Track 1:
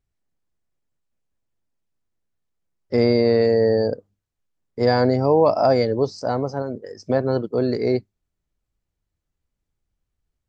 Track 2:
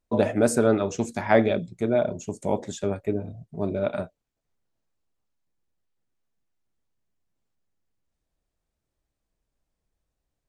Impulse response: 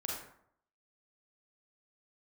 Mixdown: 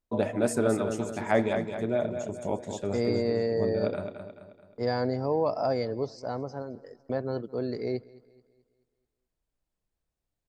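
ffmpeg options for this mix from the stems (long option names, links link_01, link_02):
-filter_complex "[0:a]agate=range=-25dB:threshold=-35dB:ratio=16:detection=peak,volume=-10.5dB,asplit=2[link_01][link_02];[link_02]volume=-22dB[link_03];[1:a]bandreject=frequency=6000:width=25,volume=-5.5dB,asplit=2[link_04][link_05];[link_05]volume=-7.5dB[link_06];[link_03][link_06]amix=inputs=2:normalize=0,aecho=0:1:216|432|648|864|1080|1296:1|0.44|0.194|0.0852|0.0375|0.0165[link_07];[link_01][link_04][link_07]amix=inputs=3:normalize=0"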